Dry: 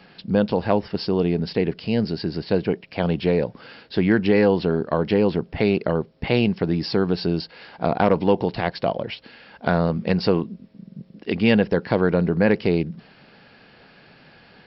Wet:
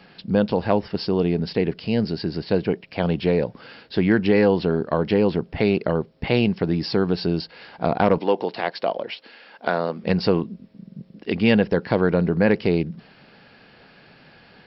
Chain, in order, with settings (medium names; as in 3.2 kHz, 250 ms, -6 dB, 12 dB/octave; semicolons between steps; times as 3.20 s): 8.18–10.04 s: high-pass 330 Hz 12 dB/octave